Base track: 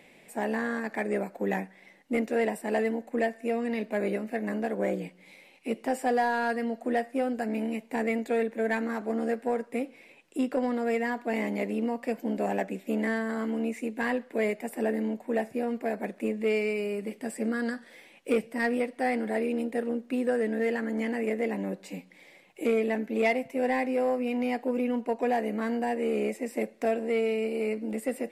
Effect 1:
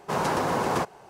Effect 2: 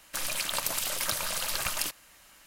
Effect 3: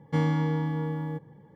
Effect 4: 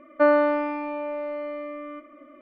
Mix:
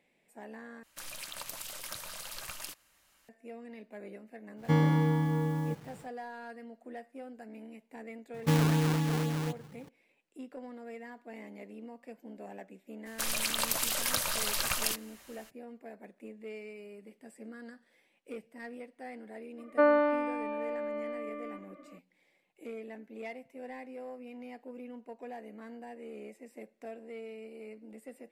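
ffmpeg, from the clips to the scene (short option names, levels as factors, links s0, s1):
-filter_complex "[2:a]asplit=2[s0][s1];[3:a]asplit=2[s2][s3];[0:a]volume=0.141[s4];[s2]acrusher=bits=8:mix=0:aa=0.000001[s5];[s3]acrusher=samples=24:mix=1:aa=0.000001:lfo=1:lforange=24:lforate=4[s6];[s4]asplit=2[s7][s8];[s7]atrim=end=0.834[s9];[s0]atrim=end=2.46,asetpts=PTS-STARTPTS,volume=0.266[s10];[s8]atrim=start=3.286[s11];[s5]atrim=end=1.55,asetpts=PTS-STARTPTS,afade=t=in:d=0.1,afade=t=out:st=1.45:d=0.1,adelay=4560[s12];[s6]atrim=end=1.55,asetpts=PTS-STARTPTS,volume=0.944,afade=t=in:d=0.004:c=hsin,afade=t=out:st=1.546:d=0.004:c=hsin,adelay=367794S[s13];[s1]atrim=end=2.46,asetpts=PTS-STARTPTS,volume=0.944,afade=t=in:d=0.02,afade=t=out:st=2.44:d=0.02,adelay=13050[s14];[4:a]atrim=end=2.41,asetpts=PTS-STARTPTS,volume=0.531,afade=t=in:d=0.004:c=hsin,afade=t=out:st=2.406:d=0.004:c=hsin,adelay=19580[s15];[s9][s10]acrossfade=d=0.004:c1=hsin:c2=hsin[s16];[s16][s11]acrossfade=d=0.004:c1=hsin:c2=hsin[s17];[s17][s12][s13][s14][s15]amix=inputs=5:normalize=0"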